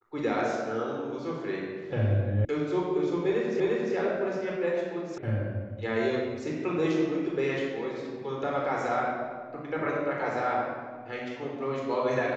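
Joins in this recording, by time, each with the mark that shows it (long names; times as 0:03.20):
0:02.45: cut off before it has died away
0:03.60: the same again, the last 0.35 s
0:05.18: cut off before it has died away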